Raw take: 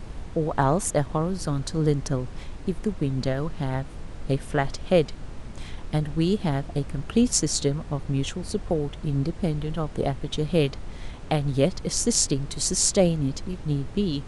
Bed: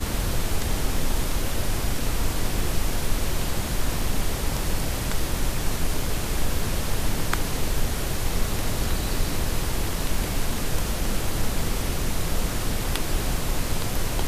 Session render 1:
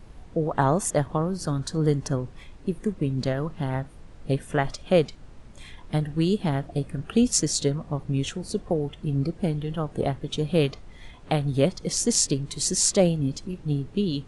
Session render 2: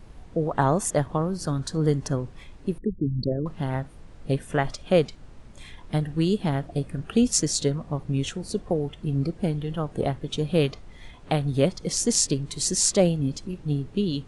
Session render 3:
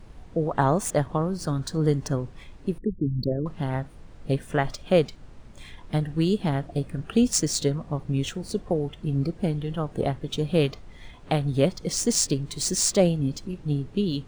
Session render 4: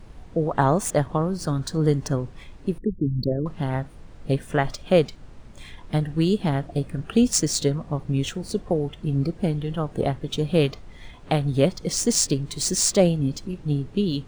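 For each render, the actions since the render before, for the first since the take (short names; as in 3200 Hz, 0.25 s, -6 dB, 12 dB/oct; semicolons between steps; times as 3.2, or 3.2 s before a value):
noise print and reduce 9 dB
2.78–3.46 formant sharpening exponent 3
median filter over 3 samples
gain +2 dB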